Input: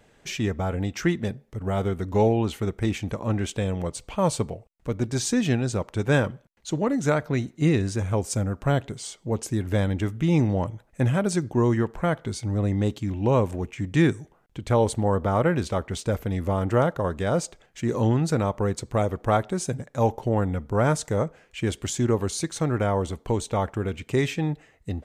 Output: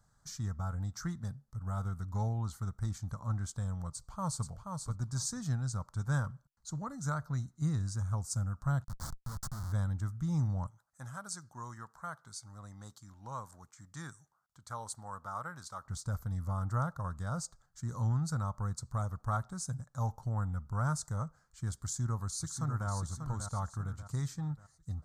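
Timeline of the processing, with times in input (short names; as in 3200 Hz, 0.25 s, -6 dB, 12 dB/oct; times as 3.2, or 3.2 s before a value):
3.91–4.46 echo throw 0.48 s, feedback 10%, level -5 dB
8.84–9.72 Schmitt trigger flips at -31 dBFS
10.67–15.85 HPF 820 Hz 6 dB/oct
21.8–22.89 echo throw 0.59 s, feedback 40%, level -7 dB
whole clip: EQ curve 140 Hz 0 dB, 390 Hz -23 dB, 1300 Hz +1 dB, 2600 Hz -30 dB, 4400 Hz -3 dB, 7300 Hz 0 dB, 11000 Hz -2 dB; gain -6.5 dB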